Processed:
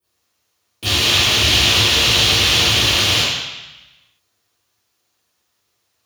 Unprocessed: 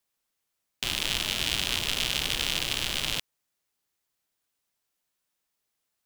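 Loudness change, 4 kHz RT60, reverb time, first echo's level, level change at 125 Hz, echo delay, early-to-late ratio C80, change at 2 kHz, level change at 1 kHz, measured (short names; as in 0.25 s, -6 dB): +14.5 dB, 1.1 s, 1.0 s, none, +19.0 dB, none, 0.5 dB, +14.5 dB, +15.5 dB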